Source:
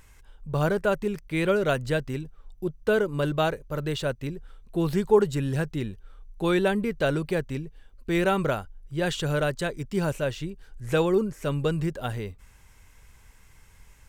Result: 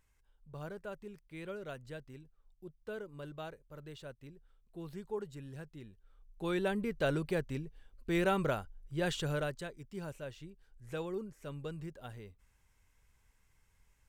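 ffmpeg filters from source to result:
-af "volume=-7dB,afade=t=in:st=5.9:d=1.19:silence=0.223872,afade=t=out:st=9.17:d=0.56:silence=0.334965"

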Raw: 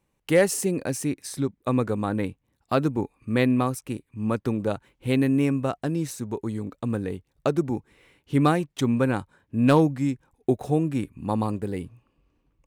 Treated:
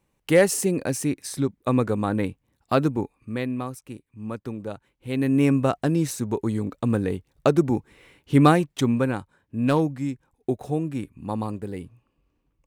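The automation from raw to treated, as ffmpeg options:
-af "volume=13.5dB,afade=t=out:st=2.83:d=0.57:silence=0.354813,afade=t=in:st=5.09:d=0.43:silence=0.266073,afade=t=out:st=8.52:d=0.68:silence=0.421697"

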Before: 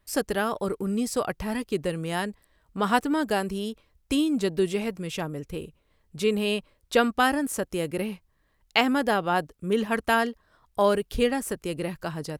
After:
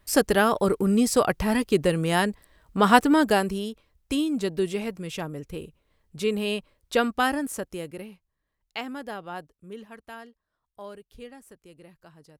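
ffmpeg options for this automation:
-af "volume=6dB,afade=t=out:st=3.19:d=0.51:silence=0.421697,afade=t=out:st=7.38:d=0.72:silence=0.298538,afade=t=out:st=9.41:d=0.55:silence=0.421697"

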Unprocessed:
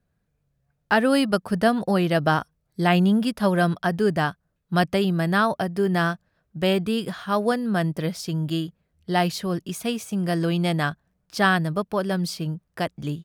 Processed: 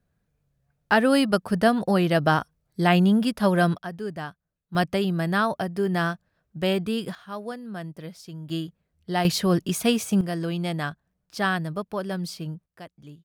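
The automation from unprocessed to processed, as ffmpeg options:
-af "asetnsamples=n=441:p=0,asendcmd='3.78 volume volume -11dB;4.75 volume volume -2.5dB;7.15 volume volume -12dB;8.5 volume volume -3.5dB;9.25 volume volume 5dB;10.21 volume volume -5dB;12.66 volume volume -16dB',volume=0dB"

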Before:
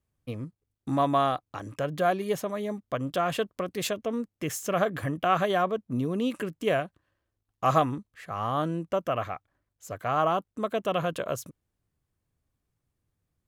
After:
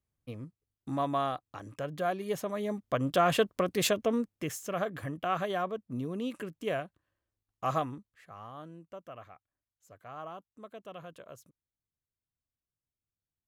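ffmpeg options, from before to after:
-af "volume=2.5dB,afade=t=in:st=2.17:d=1.15:silence=0.354813,afade=t=out:st=4.04:d=0.55:silence=0.334965,afade=t=out:st=7.64:d=0.89:silence=0.281838"

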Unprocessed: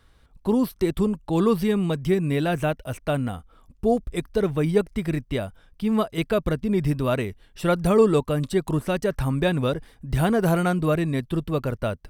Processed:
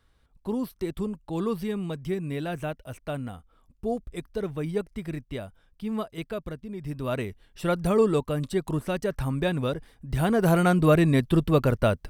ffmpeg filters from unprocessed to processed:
-af "volume=11dB,afade=t=out:st=5.95:d=0.84:silence=0.446684,afade=t=in:st=6.79:d=0.43:silence=0.281838,afade=t=in:st=10.17:d=0.89:silence=0.398107"

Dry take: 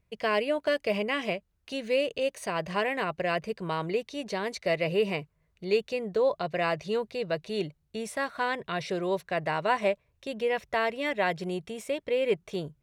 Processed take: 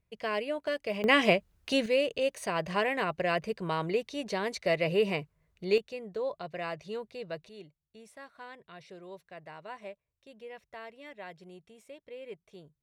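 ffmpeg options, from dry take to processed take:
-af "asetnsamples=n=441:p=0,asendcmd='1.04 volume volume 7dB;1.86 volume volume -0.5dB;5.78 volume volume -8.5dB;7.49 volume volume -17.5dB',volume=-5.5dB"

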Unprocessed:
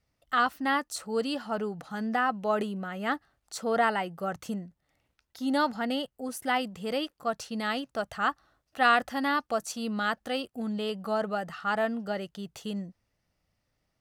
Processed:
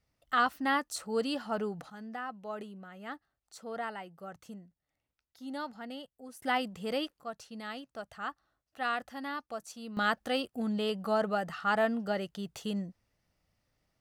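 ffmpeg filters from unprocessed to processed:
-af "asetnsamples=n=441:p=0,asendcmd='1.9 volume volume -12.5dB;6.42 volume volume -2.5dB;7.2 volume volume -10.5dB;9.97 volume volume 0dB',volume=-2dB"

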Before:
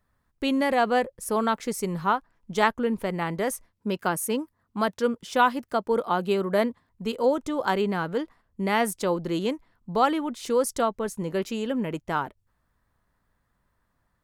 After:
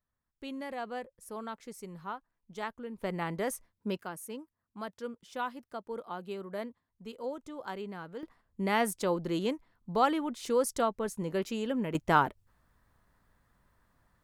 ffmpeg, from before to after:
-af "asetnsamples=n=441:p=0,asendcmd='3.03 volume volume -6dB;4.03 volume volume -15dB;8.23 volume volume -4.5dB;11.95 volume volume 3dB',volume=-16dB"

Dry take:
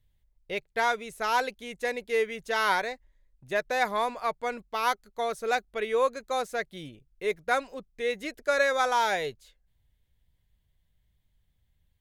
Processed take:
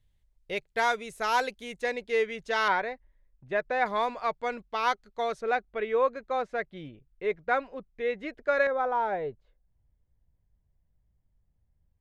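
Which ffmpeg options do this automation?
-af "asetnsamples=n=441:p=0,asendcmd='1.81 lowpass f 5800;2.68 lowpass f 2300;3.86 lowpass f 4900;5.41 lowpass f 2300;8.67 lowpass f 1000',lowpass=11k"

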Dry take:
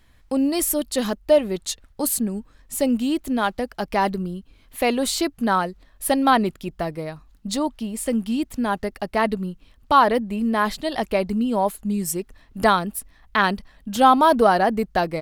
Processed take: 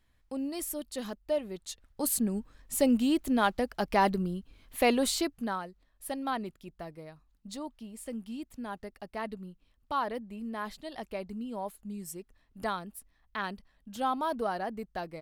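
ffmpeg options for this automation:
-af "volume=-4dB,afade=t=in:st=1.67:d=0.7:silence=0.316228,afade=t=out:st=4.93:d=0.66:silence=0.251189"

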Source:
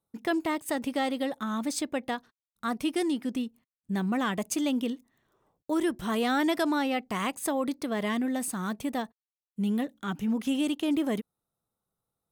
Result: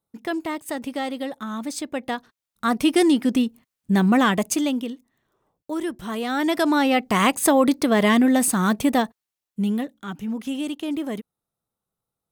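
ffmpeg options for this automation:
-af "volume=23dB,afade=t=in:st=1.83:d=1.21:silence=0.316228,afade=t=out:st=4.18:d=0.7:silence=0.281838,afade=t=in:st=6.27:d=0.98:silence=0.251189,afade=t=out:st=8.89:d=1.07:silence=0.251189"

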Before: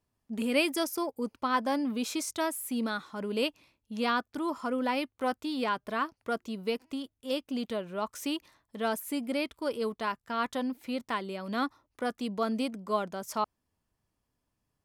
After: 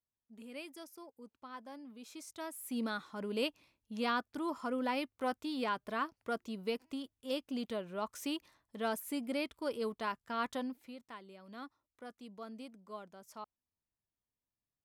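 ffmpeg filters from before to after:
-af "volume=-5dB,afade=t=in:st=1.99:d=0.53:silence=0.398107,afade=t=in:st=2.52:d=0.26:silence=0.446684,afade=t=out:st=10.54:d=0.42:silence=0.251189"

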